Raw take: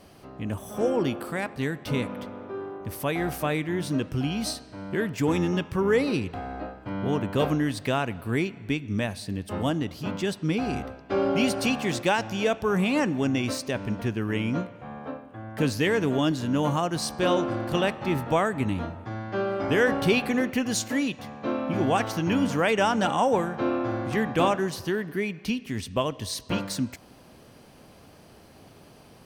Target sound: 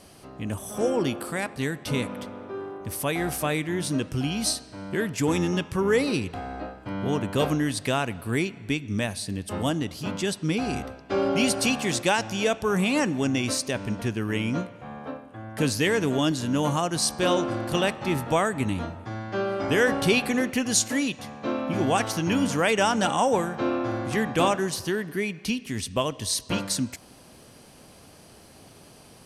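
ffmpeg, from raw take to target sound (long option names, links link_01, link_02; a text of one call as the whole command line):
ffmpeg -i in.wav -af "lowpass=frequency=11000:width=0.5412,lowpass=frequency=11000:width=1.3066,aemphasis=mode=production:type=50kf" out.wav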